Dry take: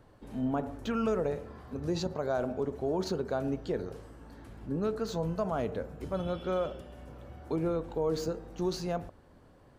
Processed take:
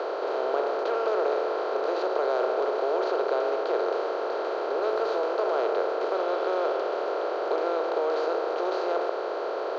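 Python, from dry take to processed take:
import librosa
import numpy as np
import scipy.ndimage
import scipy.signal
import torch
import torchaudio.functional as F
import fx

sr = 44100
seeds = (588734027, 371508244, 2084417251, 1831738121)

y = fx.bin_compress(x, sr, power=0.2)
y = scipy.signal.sosfilt(scipy.signal.butter(8, 380.0, 'highpass', fs=sr, output='sos'), y)
y = fx.quant_dither(y, sr, seeds[0], bits=8, dither='triangular', at=(4.78, 5.22))
y = fx.air_absorb(y, sr, metres=270.0)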